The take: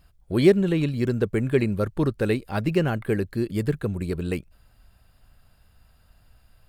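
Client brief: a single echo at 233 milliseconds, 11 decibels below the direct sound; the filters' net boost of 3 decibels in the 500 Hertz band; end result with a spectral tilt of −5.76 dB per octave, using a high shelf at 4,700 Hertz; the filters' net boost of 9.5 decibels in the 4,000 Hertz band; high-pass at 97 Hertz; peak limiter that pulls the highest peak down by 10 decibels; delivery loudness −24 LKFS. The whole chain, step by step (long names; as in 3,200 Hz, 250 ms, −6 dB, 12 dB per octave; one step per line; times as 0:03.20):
high-pass filter 97 Hz
parametric band 500 Hz +4 dB
parametric band 4,000 Hz +8 dB
high-shelf EQ 4,700 Hz +8 dB
brickwall limiter −13.5 dBFS
single-tap delay 233 ms −11 dB
level +1 dB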